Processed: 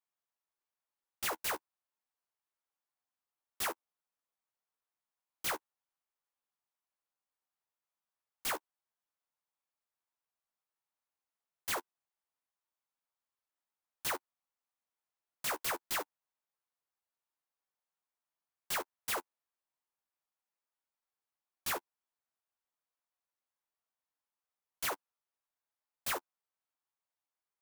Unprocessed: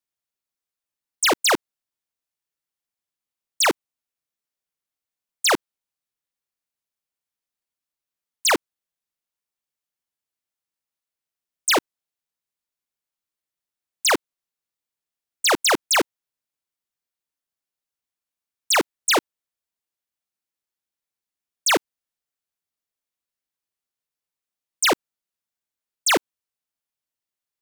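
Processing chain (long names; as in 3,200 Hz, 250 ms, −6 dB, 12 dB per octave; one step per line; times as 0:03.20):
high-pass filter 370 Hz
parametric band 950 Hz +11 dB 1.7 octaves
brickwall limiter −22.5 dBFS, peak gain reduction 19.5 dB
flanger 1 Hz, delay 9.8 ms, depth 3.7 ms, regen +11%
converter with an unsteady clock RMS 0.056 ms
level −5 dB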